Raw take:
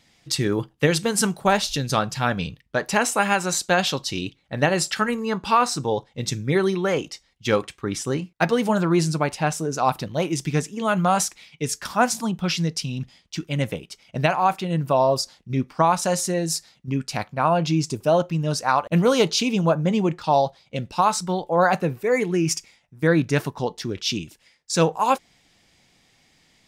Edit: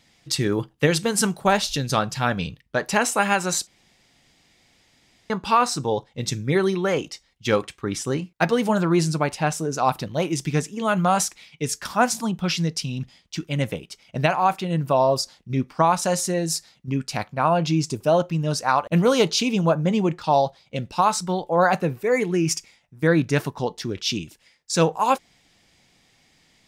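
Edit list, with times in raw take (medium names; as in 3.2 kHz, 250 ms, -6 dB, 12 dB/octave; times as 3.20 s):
3.67–5.30 s: room tone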